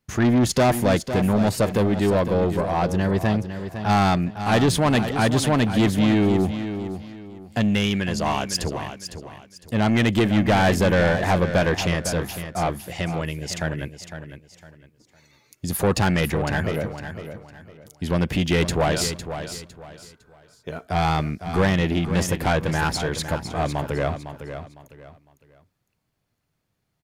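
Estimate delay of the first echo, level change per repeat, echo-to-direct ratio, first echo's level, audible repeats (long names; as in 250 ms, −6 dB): 506 ms, −10.5 dB, −9.5 dB, −10.0 dB, 3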